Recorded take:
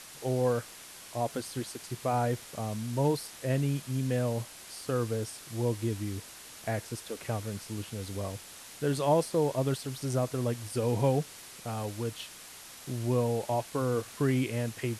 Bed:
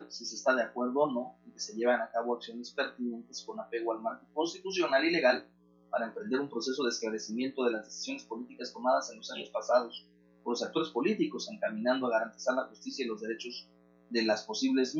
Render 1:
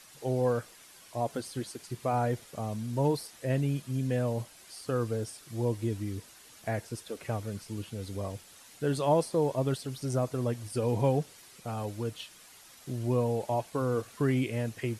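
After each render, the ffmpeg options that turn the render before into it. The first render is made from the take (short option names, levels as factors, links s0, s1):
-af "afftdn=nr=8:nf=-48"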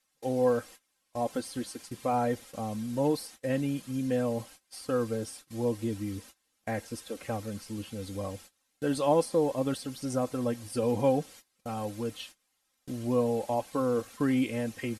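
-af "agate=range=0.0631:threshold=0.00398:ratio=16:detection=peak,aecho=1:1:3.8:0.56"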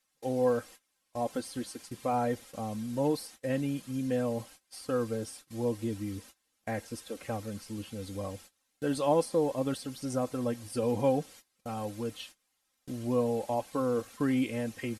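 -af "volume=0.841"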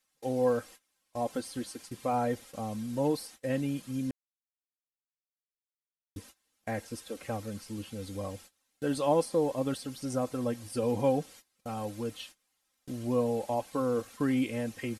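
-filter_complex "[0:a]asplit=3[s0][s1][s2];[s0]atrim=end=4.11,asetpts=PTS-STARTPTS,afade=t=out:st=4.106:d=0.004:c=hsin[s3];[s1]atrim=start=4.11:end=6.16,asetpts=PTS-STARTPTS,volume=0[s4];[s2]atrim=start=6.16,asetpts=PTS-STARTPTS,afade=t=in:d=0.004:c=hsin[s5];[s3][s4][s5]concat=n=3:v=0:a=1"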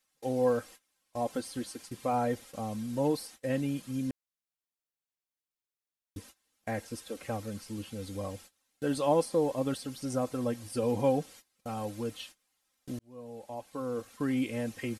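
-filter_complex "[0:a]asplit=2[s0][s1];[s0]atrim=end=12.99,asetpts=PTS-STARTPTS,afade=t=out:st=12.986:d=0.004:c=hsin[s2];[s1]atrim=start=12.99,asetpts=PTS-STARTPTS,afade=t=in:d=1.69[s3];[s2][s3]concat=n=2:v=0:a=1"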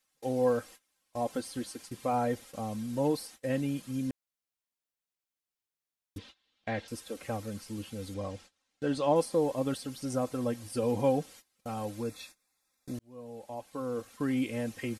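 -filter_complex "[0:a]asettb=1/sr,asplit=3[s0][s1][s2];[s0]atrim=end=6.184[s3];[s1]atrim=start=6.18:end=6.88,asetpts=PTS-STARTPTS,afade=t=in:d=0.004:c=qsin,afade=t=out:st=0.696:d=0.004:c=qsin,lowpass=f=3600:t=q:w=2.9[s4];[s2]atrim=start=6.876[s5];[s3][s4]acrossfade=d=0.004:c1=hsin:c2=qsin[s6];[s6][s5]acrossfade=d=0.004:c1=qsin:c2=hsin,asettb=1/sr,asplit=3[s7][s8][s9];[s7]atrim=end=8.144[s10];[s8]atrim=start=8.14:end=9.16,asetpts=PTS-STARTPTS,afade=t=in:d=0.004:c=qsin,afade=t=out:st=1.016:d=0.004:c=qsin,lowpass=6200[s11];[s9]atrim=start=9.156[s12];[s10][s11]acrossfade=d=0.004:c1=hsin:c2=qsin[s13];[s13][s12]acrossfade=d=0.004:c1=qsin:c2=hsin,asettb=1/sr,asplit=3[s14][s15][s16];[s14]atrim=end=12.024[s17];[s15]atrim=start=12.02:end=12.95,asetpts=PTS-STARTPTS,afade=t=in:d=0.004:c=qsin,afade=t=out:st=0.926:d=0.004:c=qsin,asuperstop=centerf=3000:order=12:qfactor=5.2[s18];[s16]atrim=start=12.946[s19];[s17][s18]acrossfade=d=0.004:c1=hsin:c2=qsin[s20];[s20][s19]acrossfade=d=0.004:c1=qsin:c2=hsin"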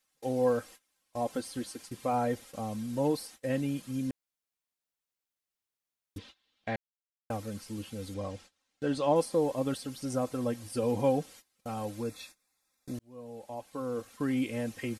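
-filter_complex "[0:a]asplit=3[s0][s1][s2];[s0]atrim=end=6.76,asetpts=PTS-STARTPTS,afade=t=out:st=6.756:d=0.004:c=hsin[s3];[s1]atrim=start=6.76:end=7.3,asetpts=PTS-STARTPTS,volume=0[s4];[s2]atrim=start=7.3,asetpts=PTS-STARTPTS,afade=t=in:d=0.004:c=hsin[s5];[s3][s4][s5]concat=n=3:v=0:a=1"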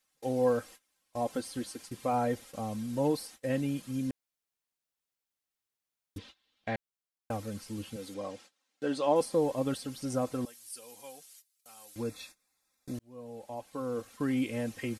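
-filter_complex "[0:a]asettb=1/sr,asplit=3[s0][s1][s2];[s0]atrim=end=7.964[s3];[s1]atrim=start=7.96:end=9.21,asetpts=PTS-STARTPTS,afade=t=in:d=0.004:c=qsin,afade=t=out:st=1.246:d=0.004:c=qsin,highpass=230[s4];[s2]atrim=start=9.206[s5];[s3][s4]acrossfade=d=0.004:c1=hsin:c2=qsin[s6];[s6][s5]acrossfade=d=0.004:c1=qsin:c2=hsin,asettb=1/sr,asplit=3[s7][s8][s9];[s7]atrim=end=10.454[s10];[s8]atrim=start=10.45:end=11.96,asetpts=PTS-STARTPTS,afade=t=in:d=0.004:c=qsin,afade=t=out:st=1.506:d=0.004:c=qsin,aderivative[s11];[s9]atrim=start=11.956[s12];[s10][s11]acrossfade=d=0.004:c1=hsin:c2=qsin[s13];[s13][s12]acrossfade=d=0.004:c1=qsin:c2=hsin"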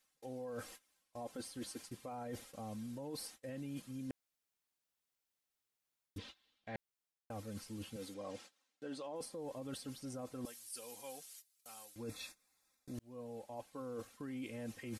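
-af "alimiter=level_in=1.26:limit=0.0631:level=0:latency=1:release=33,volume=0.794,areverse,acompressor=threshold=0.00631:ratio=4,areverse"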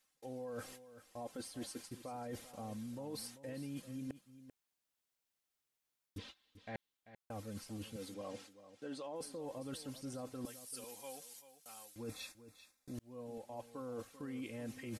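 -af "aecho=1:1:390:0.2"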